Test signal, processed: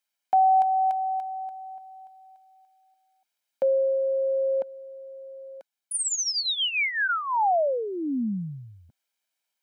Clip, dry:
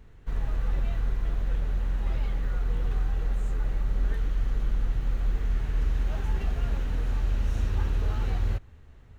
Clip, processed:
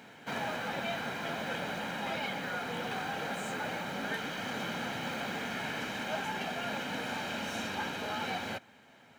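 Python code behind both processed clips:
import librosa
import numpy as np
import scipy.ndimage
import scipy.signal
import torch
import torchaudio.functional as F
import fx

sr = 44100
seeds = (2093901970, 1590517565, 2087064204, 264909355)

y = scipy.signal.sosfilt(scipy.signal.butter(4, 220.0, 'highpass', fs=sr, output='sos'), x)
y = fx.peak_eq(y, sr, hz=2600.0, db=4.0, octaves=1.8)
y = fx.notch(y, sr, hz=1500.0, q=29.0)
y = fx.rider(y, sr, range_db=4, speed_s=0.5)
y = y + 0.58 * np.pad(y, (int(1.3 * sr / 1000.0), 0))[:len(y)]
y = y * librosa.db_to_amplitude(6.5)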